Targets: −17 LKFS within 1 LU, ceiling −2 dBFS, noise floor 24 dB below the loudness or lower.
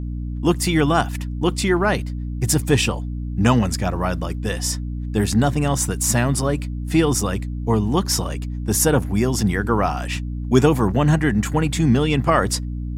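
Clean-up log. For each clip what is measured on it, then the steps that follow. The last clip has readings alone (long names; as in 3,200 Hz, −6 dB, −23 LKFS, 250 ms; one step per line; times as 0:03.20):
mains hum 60 Hz; hum harmonics up to 300 Hz; level of the hum −24 dBFS; integrated loudness −20.5 LKFS; sample peak −1.5 dBFS; target loudness −17.0 LKFS
→ mains-hum notches 60/120/180/240/300 Hz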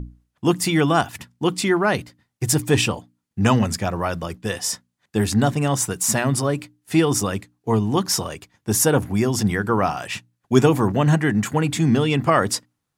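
mains hum none found; integrated loudness −21.0 LKFS; sample peak −1.0 dBFS; target loudness −17.0 LKFS
→ level +4 dB
brickwall limiter −2 dBFS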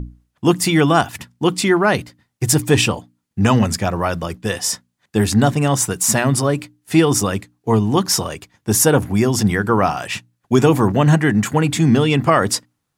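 integrated loudness −17.0 LKFS; sample peak −2.0 dBFS; background noise floor −73 dBFS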